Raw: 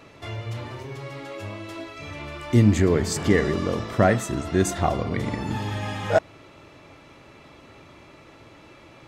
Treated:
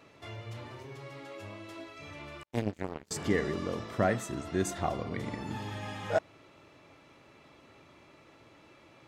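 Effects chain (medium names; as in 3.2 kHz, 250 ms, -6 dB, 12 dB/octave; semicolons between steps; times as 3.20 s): 2.43–3.11 s: power-law waveshaper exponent 3; bass shelf 65 Hz -10 dB; trim -8.5 dB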